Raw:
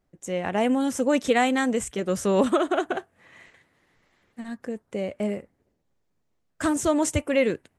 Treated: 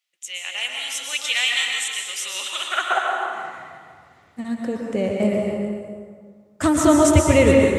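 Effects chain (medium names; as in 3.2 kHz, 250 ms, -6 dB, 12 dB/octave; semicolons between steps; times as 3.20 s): band-stop 1.6 kHz, Q 11; high-pass sweep 2.9 kHz -> 83 Hz, 2.59–3.66 s; on a send: repeats whose band climbs or falls 139 ms, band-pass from 1.3 kHz, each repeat 1.4 oct, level -7 dB; on the sum: plate-style reverb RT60 1.9 s, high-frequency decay 0.55×, pre-delay 105 ms, DRR -0.5 dB; trim +5 dB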